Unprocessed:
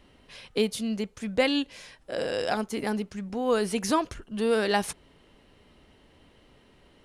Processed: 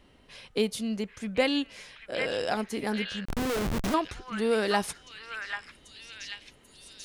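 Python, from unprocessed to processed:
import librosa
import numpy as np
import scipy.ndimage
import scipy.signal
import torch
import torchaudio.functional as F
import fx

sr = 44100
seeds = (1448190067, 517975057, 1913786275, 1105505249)

y = fx.echo_stepped(x, sr, ms=789, hz=1700.0, octaves=0.7, feedback_pct=70, wet_db=-1.5)
y = fx.schmitt(y, sr, flips_db=-25.5, at=(3.25, 3.94))
y = F.gain(torch.from_numpy(y), -1.5).numpy()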